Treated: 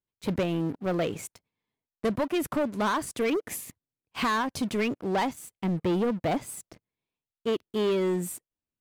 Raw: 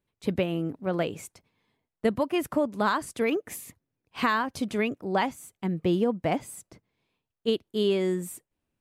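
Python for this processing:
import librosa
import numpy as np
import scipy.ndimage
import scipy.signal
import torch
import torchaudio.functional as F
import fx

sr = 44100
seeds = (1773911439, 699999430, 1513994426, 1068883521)

y = fx.leveller(x, sr, passes=3)
y = y * librosa.db_to_amplitude(-8.0)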